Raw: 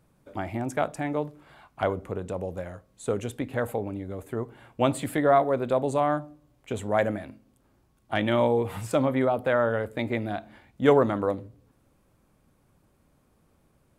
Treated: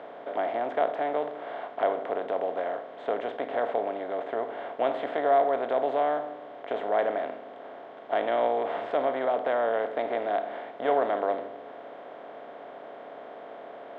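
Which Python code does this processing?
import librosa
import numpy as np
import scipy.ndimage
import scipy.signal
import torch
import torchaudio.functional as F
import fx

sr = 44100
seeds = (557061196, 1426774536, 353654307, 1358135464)

y = fx.bin_compress(x, sr, power=0.4)
y = fx.cabinet(y, sr, low_hz=420.0, low_slope=12, high_hz=3400.0, hz=(690.0, 1200.0, 2400.0), db=(7, -4, -5))
y = y * librosa.db_to_amplitude(-8.5)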